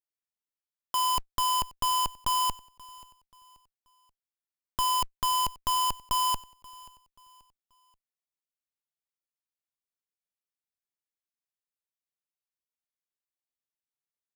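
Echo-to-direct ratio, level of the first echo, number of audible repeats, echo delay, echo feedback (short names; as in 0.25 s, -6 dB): -21.5 dB, -22.0 dB, 2, 0.532 s, 36%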